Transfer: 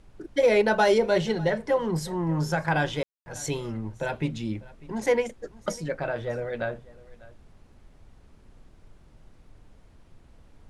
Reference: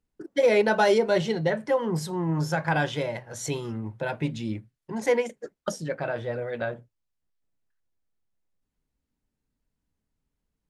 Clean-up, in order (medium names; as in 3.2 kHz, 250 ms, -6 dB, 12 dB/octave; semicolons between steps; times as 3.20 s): room tone fill 3.03–3.26 s; noise print and reduce 28 dB; inverse comb 598 ms -21.5 dB